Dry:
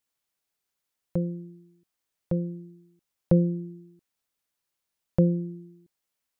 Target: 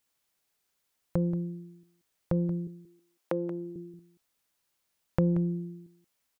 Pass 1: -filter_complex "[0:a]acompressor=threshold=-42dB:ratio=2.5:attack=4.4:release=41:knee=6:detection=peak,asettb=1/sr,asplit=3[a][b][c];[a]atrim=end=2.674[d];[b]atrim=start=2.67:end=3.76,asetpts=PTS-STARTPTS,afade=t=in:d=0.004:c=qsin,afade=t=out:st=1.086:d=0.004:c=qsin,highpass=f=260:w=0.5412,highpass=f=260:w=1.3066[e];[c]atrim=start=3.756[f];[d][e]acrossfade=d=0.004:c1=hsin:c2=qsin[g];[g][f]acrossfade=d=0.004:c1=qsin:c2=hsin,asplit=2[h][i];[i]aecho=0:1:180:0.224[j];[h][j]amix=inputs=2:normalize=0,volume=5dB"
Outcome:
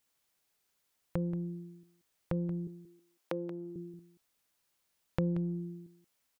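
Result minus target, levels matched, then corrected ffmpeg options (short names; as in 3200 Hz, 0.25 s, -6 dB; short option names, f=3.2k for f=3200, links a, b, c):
compressor: peak gain reduction +6 dB
-filter_complex "[0:a]acompressor=threshold=-32dB:ratio=2.5:attack=4.4:release=41:knee=6:detection=peak,asettb=1/sr,asplit=3[a][b][c];[a]atrim=end=2.674[d];[b]atrim=start=2.67:end=3.76,asetpts=PTS-STARTPTS,afade=t=in:d=0.004:c=qsin,afade=t=out:st=1.086:d=0.004:c=qsin,highpass=f=260:w=0.5412,highpass=f=260:w=1.3066[e];[c]atrim=start=3.756[f];[d][e]acrossfade=d=0.004:c1=hsin:c2=qsin[g];[g][f]acrossfade=d=0.004:c1=qsin:c2=hsin,asplit=2[h][i];[i]aecho=0:1:180:0.224[j];[h][j]amix=inputs=2:normalize=0,volume=5dB"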